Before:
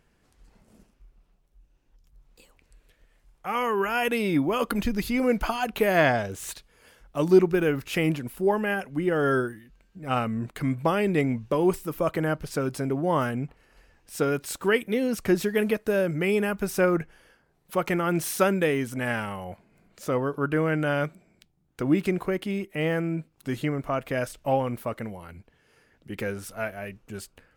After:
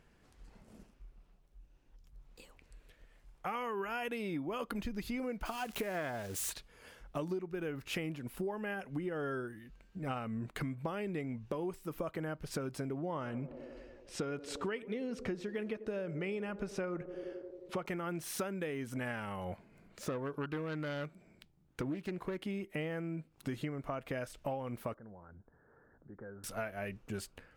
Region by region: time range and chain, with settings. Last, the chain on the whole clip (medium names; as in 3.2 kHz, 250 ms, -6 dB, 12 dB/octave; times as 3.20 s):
5.45–6.50 s: zero-crossing glitches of -26 dBFS + loudspeaker Doppler distortion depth 0.1 ms
12.99–17.86 s: low-pass 6.3 kHz + band-stop 1.6 kHz, Q 22 + band-passed feedback delay 89 ms, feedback 80%, band-pass 430 Hz, level -16.5 dB
19.41–22.39 s: self-modulated delay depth 0.22 ms + band-stop 740 Hz, Q 20
24.94–26.44 s: elliptic low-pass 1.6 kHz + compression 2:1, threshold -60 dBFS
whole clip: treble shelf 7.3 kHz -6 dB; compression 12:1, threshold -35 dBFS